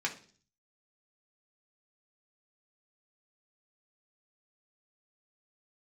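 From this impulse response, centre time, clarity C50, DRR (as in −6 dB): 11 ms, 13.0 dB, −1.5 dB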